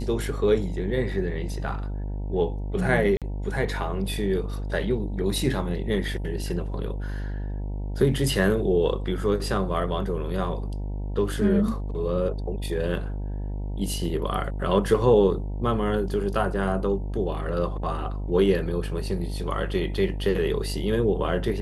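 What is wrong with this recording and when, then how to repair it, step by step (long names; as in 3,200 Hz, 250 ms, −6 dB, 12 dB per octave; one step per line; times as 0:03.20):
mains buzz 50 Hz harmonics 19 −30 dBFS
0:03.17–0:03.22: drop-out 47 ms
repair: hum removal 50 Hz, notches 19
repair the gap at 0:03.17, 47 ms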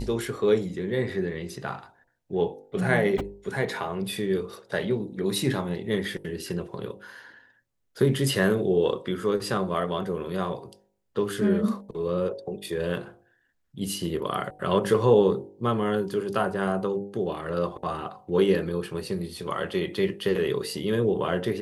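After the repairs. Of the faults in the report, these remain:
none of them is left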